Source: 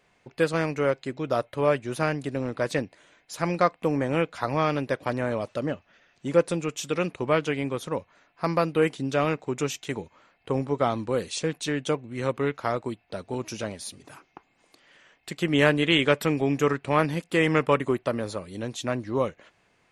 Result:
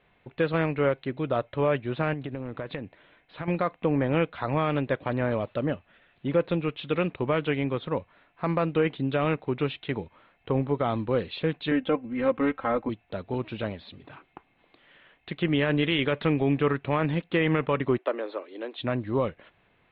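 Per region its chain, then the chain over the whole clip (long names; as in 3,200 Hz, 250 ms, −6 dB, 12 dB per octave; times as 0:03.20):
0:02.13–0:03.48: low-pass filter 4,100 Hz + downward compressor 12 to 1, threshold −30 dBFS
0:11.71–0:12.89: low-pass filter 2,500 Hz + comb filter 3.8 ms, depth 84%
0:17.98–0:18.78: Butterworth high-pass 290 Hz 48 dB per octave + high-frequency loss of the air 120 metres
whole clip: Butterworth low-pass 3,900 Hz 72 dB per octave; low-shelf EQ 130 Hz +6 dB; brickwall limiter −14 dBFS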